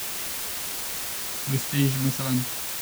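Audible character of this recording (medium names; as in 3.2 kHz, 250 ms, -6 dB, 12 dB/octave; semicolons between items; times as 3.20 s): phasing stages 2, 3.9 Hz, lowest notch 330–1100 Hz; a quantiser's noise floor 6-bit, dither triangular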